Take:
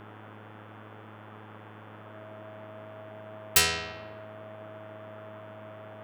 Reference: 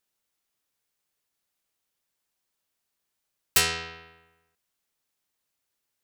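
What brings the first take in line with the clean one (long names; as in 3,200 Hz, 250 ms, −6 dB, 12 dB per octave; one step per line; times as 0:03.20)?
hum removal 106.7 Hz, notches 33
notch filter 640 Hz, Q 30
noise reduction from a noise print 30 dB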